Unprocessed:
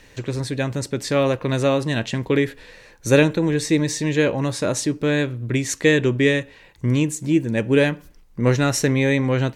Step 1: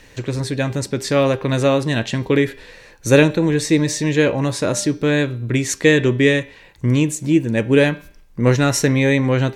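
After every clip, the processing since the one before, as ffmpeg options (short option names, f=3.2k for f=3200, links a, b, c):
-af "bandreject=f=199.1:t=h:w=4,bandreject=f=398.2:t=h:w=4,bandreject=f=597.3:t=h:w=4,bandreject=f=796.4:t=h:w=4,bandreject=f=995.5:t=h:w=4,bandreject=f=1.1946k:t=h:w=4,bandreject=f=1.3937k:t=h:w=4,bandreject=f=1.5928k:t=h:w=4,bandreject=f=1.7919k:t=h:w=4,bandreject=f=1.991k:t=h:w=4,bandreject=f=2.1901k:t=h:w=4,bandreject=f=2.3892k:t=h:w=4,bandreject=f=2.5883k:t=h:w=4,bandreject=f=2.7874k:t=h:w=4,bandreject=f=2.9865k:t=h:w=4,bandreject=f=3.1856k:t=h:w=4,bandreject=f=3.3847k:t=h:w=4,bandreject=f=3.5838k:t=h:w=4,bandreject=f=3.7829k:t=h:w=4,bandreject=f=3.982k:t=h:w=4,bandreject=f=4.1811k:t=h:w=4,bandreject=f=4.3802k:t=h:w=4,bandreject=f=4.5793k:t=h:w=4,bandreject=f=4.7784k:t=h:w=4,bandreject=f=4.9775k:t=h:w=4,bandreject=f=5.1766k:t=h:w=4,bandreject=f=5.3757k:t=h:w=4,bandreject=f=5.5748k:t=h:w=4,bandreject=f=5.7739k:t=h:w=4,bandreject=f=5.973k:t=h:w=4,volume=3dB"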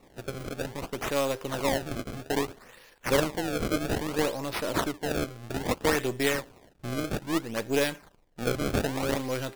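-af "aeval=exprs='if(lt(val(0),0),0.447*val(0),val(0))':c=same,bass=f=250:g=-8,treble=f=4k:g=9,acrusher=samples=27:mix=1:aa=0.000001:lfo=1:lforange=43.2:lforate=0.61,volume=-8.5dB"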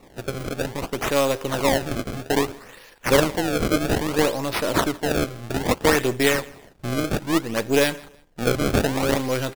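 -af "aecho=1:1:162|324:0.0668|0.018,volume=7dB"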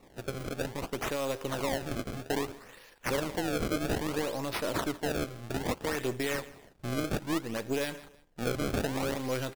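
-af "alimiter=limit=-14dB:level=0:latency=1:release=95,volume=-7.5dB"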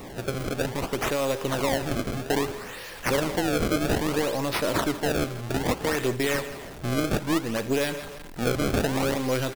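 -af "aeval=exprs='val(0)+0.5*0.00841*sgn(val(0))':c=same,aecho=1:1:157:0.126,volume=5.5dB"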